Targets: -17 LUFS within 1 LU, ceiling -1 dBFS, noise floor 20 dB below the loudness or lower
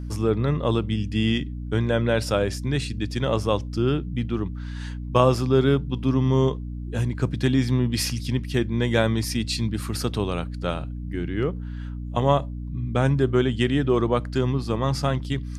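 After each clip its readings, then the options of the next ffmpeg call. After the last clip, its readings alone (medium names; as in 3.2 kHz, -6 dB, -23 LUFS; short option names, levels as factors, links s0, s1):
hum 60 Hz; highest harmonic 300 Hz; hum level -30 dBFS; loudness -24.0 LUFS; peak level -3.0 dBFS; loudness target -17.0 LUFS
-> -af "bandreject=f=60:t=h:w=4,bandreject=f=120:t=h:w=4,bandreject=f=180:t=h:w=4,bandreject=f=240:t=h:w=4,bandreject=f=300:t=h:w=4"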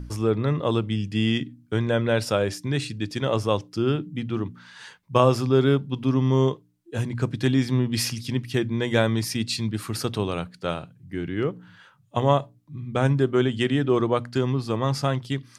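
hum not found; loudness -24.5 LUFS; peak level -4.0 dBFS; loudness target -17.0 LUFS
-> -af "volume=2.37,alimiter=limit=0.891:level=0:latency=1"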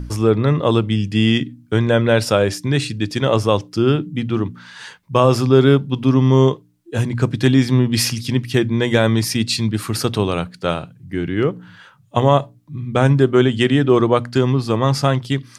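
loudness -17.5 LUFS; peak level -1.0 dBFS; noise floor -50 dBFS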